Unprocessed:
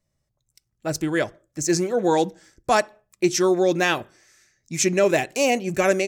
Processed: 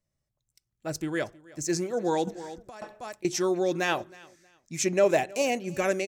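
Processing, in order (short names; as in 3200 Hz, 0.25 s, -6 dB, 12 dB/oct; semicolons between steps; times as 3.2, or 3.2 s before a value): feedback echo 0.317 s, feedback 26%, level -22 dB; 2.27–3.25 negative-ratio compressor -31 dBFS, ratio -1; 3.87–5.42 dynamic EQ 690 Hz, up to +6 dB, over -33 dBFS, Q 1.2; gain -7 dB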